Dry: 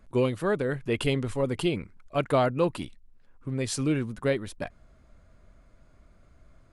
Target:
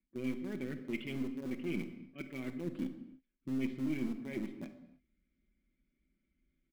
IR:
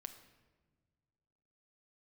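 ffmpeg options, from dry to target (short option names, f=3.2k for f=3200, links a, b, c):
-filter_complex "[0:a]afwtdn=0.0126,acrossover=split=3300[a][b];[b]acompressor=threshold=-57dB:ratio=4:attack=1:release=60[c];[a][c]amix=inputs=2:normalize=0,aecho=1:1:5.3:0.75,areverse,acompressor=threshold=-32dB:ratio=16,areverse,asplit=3[d][e][f];[d]bandpass=f=270:t=q:w=8,volume=0dB[g];[e]bandpass=f=2.29k:t=q:w=8,volume=-6dB[h];[f]bandpass=f=3.01k:t=q:w=8,volume=-9dB[i];[g][h][i]amix=inputs=3:normalize=0,asplit=2[j][k];[k]acrusher=bits=5:dc=4:mix=0:aa=0.000001,volume=-11dB[l];[j][l]amix=inputs=2:normalize=0[m];[1:a]atrim=start_sample=2205,afade=t=out:st=0.38:d=0.01,atrim=end_sample=17199[n];[m][n]afir=irnorm=-1:irlink=0,volume=14dB"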